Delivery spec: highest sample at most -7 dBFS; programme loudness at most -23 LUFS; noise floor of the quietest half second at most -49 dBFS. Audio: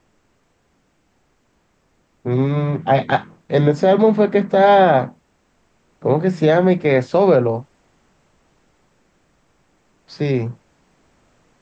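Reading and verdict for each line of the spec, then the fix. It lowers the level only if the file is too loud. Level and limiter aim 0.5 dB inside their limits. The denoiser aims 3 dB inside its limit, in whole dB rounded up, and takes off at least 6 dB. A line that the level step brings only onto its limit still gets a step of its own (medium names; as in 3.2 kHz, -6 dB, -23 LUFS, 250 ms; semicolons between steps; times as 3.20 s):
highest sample -4.5 dBFS: fail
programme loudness -16.5 LUFS: fail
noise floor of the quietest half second -63 dBFS: pass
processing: trim -7 dB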